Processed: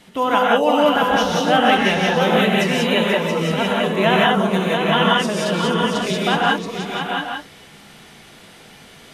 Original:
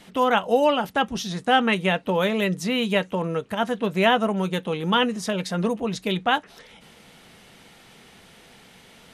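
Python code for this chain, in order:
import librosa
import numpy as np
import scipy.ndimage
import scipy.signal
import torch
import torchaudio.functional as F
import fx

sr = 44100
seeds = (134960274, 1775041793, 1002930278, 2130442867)

p1 = x + fx.echo_multitap(x, sr, ms=(483, 678, 844), db=(-12.5, -6.5, -10.0), dry=0)
y = fx.rev_gated(p1, sr, seeds[0], gate_ms=210, shape='rising', drr_db=-3.5)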